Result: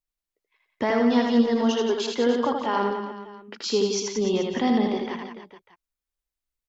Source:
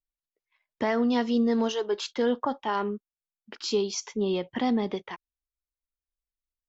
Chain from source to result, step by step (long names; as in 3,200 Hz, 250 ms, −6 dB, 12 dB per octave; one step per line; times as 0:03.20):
reverse bouncing-ball delay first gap 80 ms, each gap 1.2×, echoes 5
level +2 dB